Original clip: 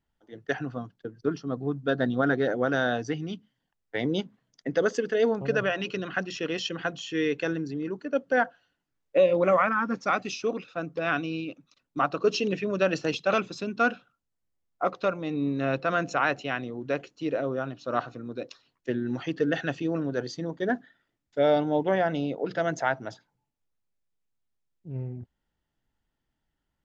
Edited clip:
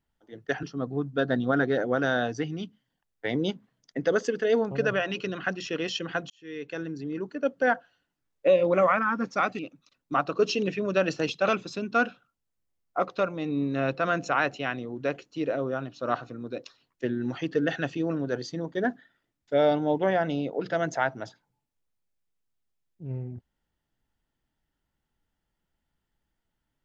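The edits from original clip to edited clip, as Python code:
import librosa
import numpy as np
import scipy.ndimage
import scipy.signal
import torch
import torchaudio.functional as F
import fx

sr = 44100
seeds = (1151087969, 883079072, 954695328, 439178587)

y = fx.edit(x, sr, fx.cut(start_s=0.63, length_s=0.7),
    fx.fade_in_span(start_s=7.0, length_s=0.93),
    fx.cut(start_s=10.29, length_s=1.15), tone=tone)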